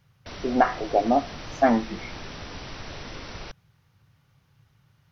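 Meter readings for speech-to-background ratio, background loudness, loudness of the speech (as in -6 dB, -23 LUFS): 15.0 dB, -39.0 LUFS, -24.0 LUFS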